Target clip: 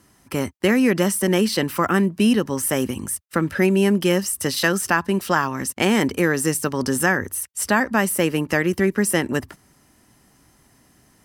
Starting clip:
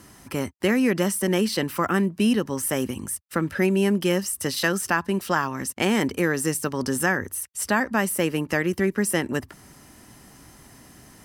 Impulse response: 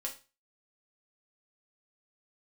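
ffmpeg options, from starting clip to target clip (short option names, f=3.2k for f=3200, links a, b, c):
-af "agate=range=-11dB:threshold=-40dB:ratio=16:detection=peak,volume=3.5dB"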